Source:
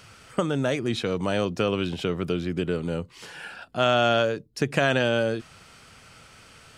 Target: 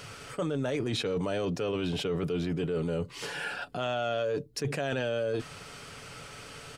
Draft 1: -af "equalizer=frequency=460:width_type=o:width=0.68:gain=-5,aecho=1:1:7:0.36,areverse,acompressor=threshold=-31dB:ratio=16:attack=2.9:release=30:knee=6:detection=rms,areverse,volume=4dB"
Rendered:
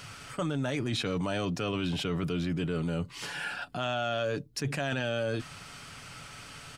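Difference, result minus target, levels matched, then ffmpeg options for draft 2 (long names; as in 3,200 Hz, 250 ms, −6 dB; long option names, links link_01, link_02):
500 Hz band −3.0 dB
-af "equalizer=frequency=460:width_type=o:width=0.68:gain=5,aecho=1:1:7:0.36,areverse,acompressor=threshold=-31dB:ratio=16:attack=2.9:release=30:knee=6:detection=rms,areverse,volume=4dB"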